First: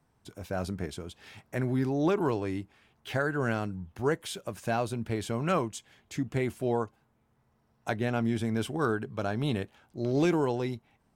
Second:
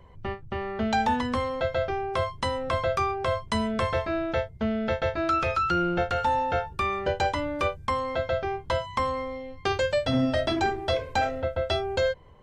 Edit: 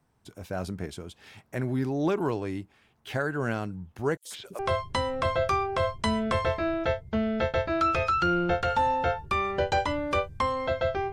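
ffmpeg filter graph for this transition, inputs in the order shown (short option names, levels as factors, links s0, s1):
-filter_complex "[0:a]asettb=1/sr,asplit=3[s0][s1][s2];[s0]atrim=end=4.174[s3];[s1]atrim=start=4.17:end=4.59,asetpts=PTS-STARTPTS,afade=t=in:d=0.004:c=qsin,afade=t=out:st=0.416:d=0.004:c=qsin,acrossover=split=400|4400[s4][s5][s6];[s5]adelay=80[s7];[s4]adelay=150[s8];[s8][s7][s6]amix=inputs=3:normalize=0,atrim=end_sample=18522[s9];[s2]atrim=start=4.586[s10];[s3][s9]acrossfade=d=0.004:c1=hsin:c2=qsin[s11];[s11][s10]acrossfade=d=0.004:c1=qsin:c2=hsin,apad=whole_dur=11.12,atrim=end=11.12,atrim=end=4.592[s12];[1:a]atrim=start=2.068:end=8.6[s13];[s12][s13]acrossfade=d=0.004:c1=hsin:c2=hsin"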